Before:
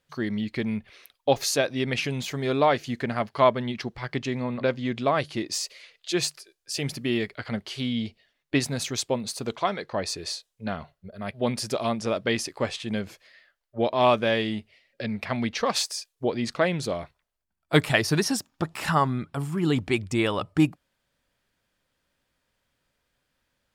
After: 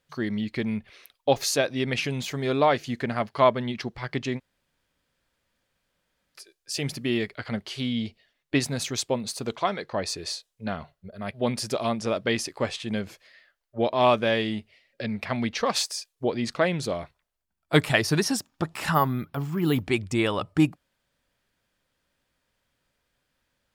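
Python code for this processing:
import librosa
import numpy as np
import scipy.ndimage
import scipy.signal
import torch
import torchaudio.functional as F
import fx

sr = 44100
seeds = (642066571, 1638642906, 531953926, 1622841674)

y = fx.resample_bad(x, sr, factor=3, down='filtered', up='hold', at=(18.94, 19.83))
y = fx.edit(y, sr, fx.room_tone_fill(start_s=4.38, length_s=1.98, crossfade_s=0.04), tone=tone)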